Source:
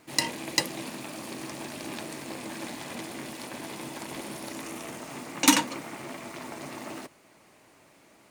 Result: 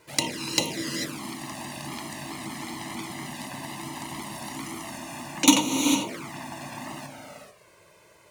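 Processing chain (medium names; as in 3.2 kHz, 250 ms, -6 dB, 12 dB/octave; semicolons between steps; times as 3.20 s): gated-style reverb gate 470 ms rising, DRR 4 dB; touch-sensitive flanger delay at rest 2.1 ms, full sweep at -24.5 dBFS; trim +4 dB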